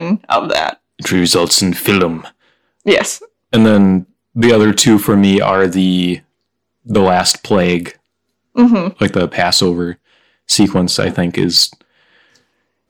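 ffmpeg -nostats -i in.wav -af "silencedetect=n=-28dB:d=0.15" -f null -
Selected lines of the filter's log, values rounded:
silence_start: 0.73
silence_end: 0.99 | silence_duration: 0.26
silence_start: 2.28
silence_end: 2.86 | silence_duration: 0.57
silence_start: 3.24
silence_end: 3.53 | silence_duration: 0.28
silence_start: 4.03
silence_end: 4.36 | silence_duration: 0.34
silence_start: 6.18
silence_end: 6.87 | silence_duration: 0.70
silence_start: 7.91
silence_end: 8.56 | silence_duration: 0.65
silence_start: 9.93
silence_end: 10.49 | silence_duration: 0.56
silence_start: 11.73
silence_end: 12.89 | silence_duration: 1.16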